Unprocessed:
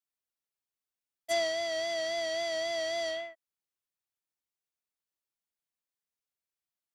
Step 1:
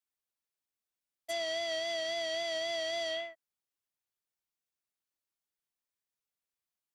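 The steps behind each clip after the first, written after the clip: dynamic bell 3 kHz, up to +6 dB, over -50 dBFS, Q 2; peak limiter -26 dBFS, peak gain reduction 7.5 dB; trim -1 dB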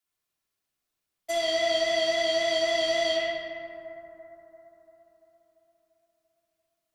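bucket-brigade echo 342 ms, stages 4096, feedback 59%, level -12 dB; simulated room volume 2100 m³, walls mixed, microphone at 3.2 m; trim +3.5 dB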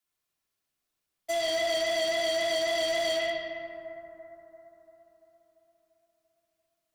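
hard clipper -25 dBFS, distortion -11 dB

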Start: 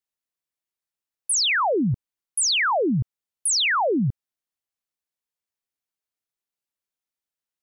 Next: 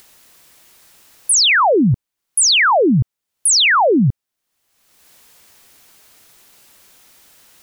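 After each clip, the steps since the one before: upward compressor, threshold -32 dBFS; trim +8.5 dB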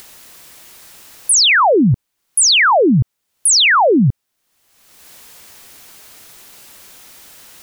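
peak limiter -16 dBFS, peak gain reduction 6.5 dB; trim +8 dB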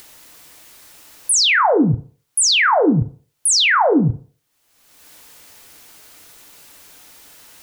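FDN reverb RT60 0.45 s, low-frequency decay 0.75×, high-frequency decay 0.45×, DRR 7 dB; trim -4 dB

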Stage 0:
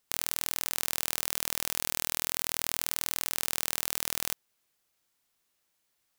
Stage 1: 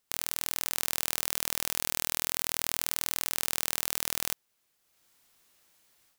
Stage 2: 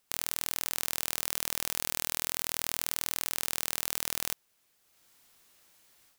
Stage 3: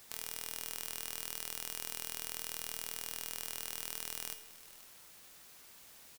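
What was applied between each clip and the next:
level rider gain up to 12 dB; trim -1.5 dB
companded quantiser 8-bit; saturation -6 dBFS, distortion -29 dB; trim +3 dB
feedback comb 220 Hz, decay 0.64 s, harmonics all, mix 80%; word length cut 10-bit, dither triangular; delay 505 ms -18 dB; trim +3 dB

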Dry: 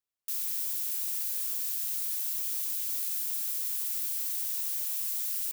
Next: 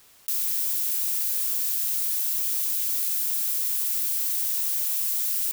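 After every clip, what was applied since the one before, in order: in parallel at -12 dB: saturation -34.5 dBFS, distortion -9 dB; on the sum: level flattener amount 50%; trim +5 dB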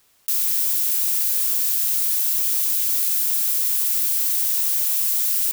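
upward expansion 1.5:1, over -46 dBFS; trim +5.5 dB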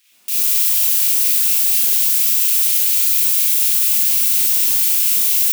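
LFO high-pass square 4.2 Hz 230–2500 Hz; Schroeder reverb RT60 1 s, combs from 31 ms, DRR -5.5 dB; trim -1 dB

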